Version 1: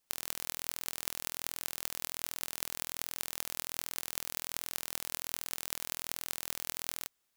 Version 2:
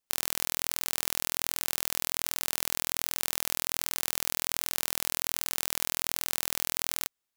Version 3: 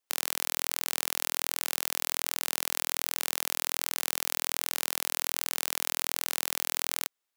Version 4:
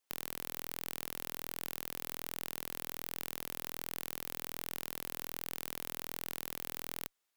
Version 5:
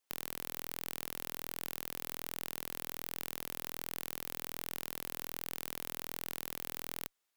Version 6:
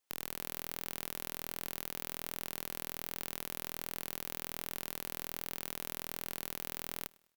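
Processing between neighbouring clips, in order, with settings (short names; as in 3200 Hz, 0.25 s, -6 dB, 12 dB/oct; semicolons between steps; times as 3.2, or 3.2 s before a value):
sample leveller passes 5; gain +3.5 dB
tone controls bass -11 dB, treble -2 dB; gain +1.5 dB
one-sided clip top -18.5 dBFS; gain +1 dB
nothing audible
feedback echo 0.102 s, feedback 40%, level -24 dB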